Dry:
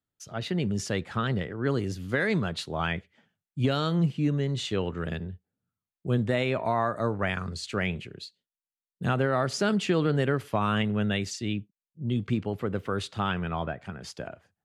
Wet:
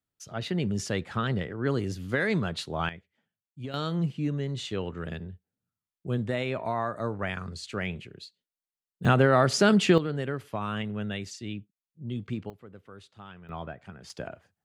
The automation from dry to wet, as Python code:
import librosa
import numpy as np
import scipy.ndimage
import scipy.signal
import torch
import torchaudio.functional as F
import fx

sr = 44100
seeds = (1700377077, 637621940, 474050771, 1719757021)

y = fx.gain(x, sr, db=fx.steps((0.0, -0.5), (2.89, -12.5), (3.74, -3.5), (9.05, 5.0), (9.98, -6.0), (12.5, -18.0), (13.49, -6.5), (14.1, 0.0)))